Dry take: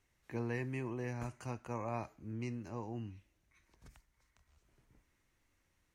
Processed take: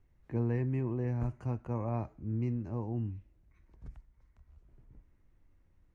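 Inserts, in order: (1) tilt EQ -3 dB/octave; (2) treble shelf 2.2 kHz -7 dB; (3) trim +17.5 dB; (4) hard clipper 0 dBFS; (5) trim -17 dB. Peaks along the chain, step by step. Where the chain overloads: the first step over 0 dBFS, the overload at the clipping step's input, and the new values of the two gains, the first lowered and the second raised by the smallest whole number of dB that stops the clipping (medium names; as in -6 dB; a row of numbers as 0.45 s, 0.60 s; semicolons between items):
-23.0 dBFS, -23.0 dBFS, -5.5 dBFS, -5.5 dBFS, -22.5 dBFS; nothing clips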